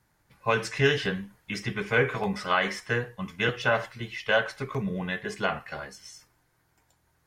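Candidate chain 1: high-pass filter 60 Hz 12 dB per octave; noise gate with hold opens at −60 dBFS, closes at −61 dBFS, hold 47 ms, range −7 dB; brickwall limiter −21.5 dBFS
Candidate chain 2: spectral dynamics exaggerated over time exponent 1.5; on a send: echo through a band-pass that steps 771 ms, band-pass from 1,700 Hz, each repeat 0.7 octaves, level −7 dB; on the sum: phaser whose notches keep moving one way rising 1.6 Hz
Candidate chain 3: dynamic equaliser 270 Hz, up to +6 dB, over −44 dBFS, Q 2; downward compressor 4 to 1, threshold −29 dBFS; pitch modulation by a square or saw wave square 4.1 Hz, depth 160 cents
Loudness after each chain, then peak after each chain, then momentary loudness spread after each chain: −33.5, −32.5, −34.0 LKFS; −21.5, −12.0, −15.5 dBFS; 9, 18, 8 LU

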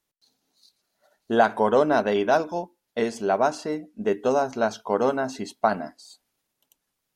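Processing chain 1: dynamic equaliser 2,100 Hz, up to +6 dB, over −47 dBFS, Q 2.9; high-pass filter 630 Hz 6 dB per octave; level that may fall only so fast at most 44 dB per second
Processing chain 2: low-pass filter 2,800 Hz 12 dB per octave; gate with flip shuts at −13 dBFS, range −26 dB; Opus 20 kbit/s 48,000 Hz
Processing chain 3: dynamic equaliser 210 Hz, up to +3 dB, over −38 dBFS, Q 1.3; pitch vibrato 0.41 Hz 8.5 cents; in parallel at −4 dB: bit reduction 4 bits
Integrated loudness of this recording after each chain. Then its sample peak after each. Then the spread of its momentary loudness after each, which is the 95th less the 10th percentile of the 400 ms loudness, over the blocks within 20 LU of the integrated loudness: −25.0, −34.0, −19.5 LKFS; −5.0, −9.5, −2.5 dBFS; 10, 12, 12 LU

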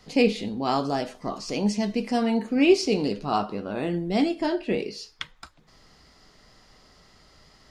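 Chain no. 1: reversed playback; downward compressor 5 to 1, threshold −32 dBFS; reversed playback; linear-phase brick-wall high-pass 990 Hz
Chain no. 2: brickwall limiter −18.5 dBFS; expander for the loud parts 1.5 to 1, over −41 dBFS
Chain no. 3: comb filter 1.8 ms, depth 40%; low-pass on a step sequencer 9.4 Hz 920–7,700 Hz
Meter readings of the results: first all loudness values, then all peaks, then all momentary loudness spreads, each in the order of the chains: −43.5, −31.0, −25.0 LKFS; −18.5, −18.5, −5.5 dBFS; 16, 11, 10 LU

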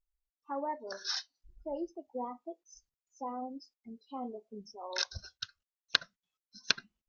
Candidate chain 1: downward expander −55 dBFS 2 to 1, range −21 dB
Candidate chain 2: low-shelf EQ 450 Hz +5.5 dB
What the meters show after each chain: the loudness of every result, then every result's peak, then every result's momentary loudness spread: −38.0, −37.0 LKFS; −5.0, −4.5 dBFS; 18, 16 LU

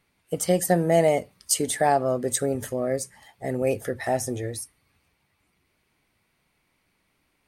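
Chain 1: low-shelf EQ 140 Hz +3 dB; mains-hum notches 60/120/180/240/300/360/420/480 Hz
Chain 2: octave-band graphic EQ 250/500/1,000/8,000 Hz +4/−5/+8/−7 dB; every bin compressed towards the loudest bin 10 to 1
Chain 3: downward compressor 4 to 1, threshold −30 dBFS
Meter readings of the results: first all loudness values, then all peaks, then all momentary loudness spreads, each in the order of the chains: −25.0, −24.5, −34.0 LKFS; −8.5, −6.5, −14.5 dBFS; 13, 8, 6 LU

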